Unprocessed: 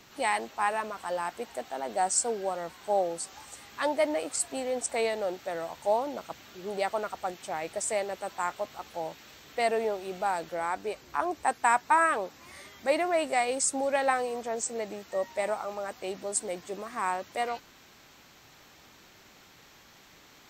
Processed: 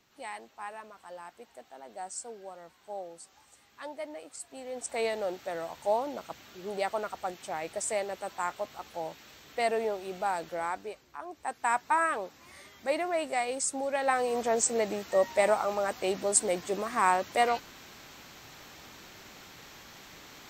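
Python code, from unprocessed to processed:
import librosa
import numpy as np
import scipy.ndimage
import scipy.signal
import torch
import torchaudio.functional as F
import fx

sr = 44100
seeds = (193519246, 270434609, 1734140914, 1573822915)

y = fx.gain(x, sr, db=fx.line((4.45, -13.0), (5.06, -1.5), (10.67, -1.5), (11.2, -13.0), (11.74, -3.5), (13.98, -3.5), (14.41, 5.5)))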